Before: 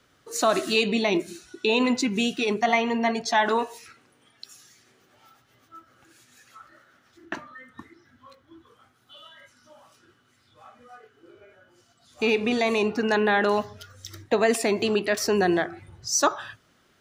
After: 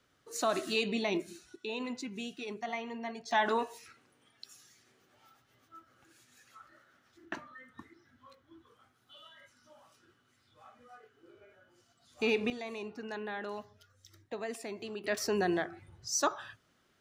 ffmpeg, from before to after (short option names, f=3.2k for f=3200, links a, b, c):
-af "asetnsamples=n=441:p=0,asendcmd='1.56 volume volume -16dB;3.31 volume volume -7dB;12.5 volume volume -18dB;15.04 volume volume -8.5dB',volume=-9dB"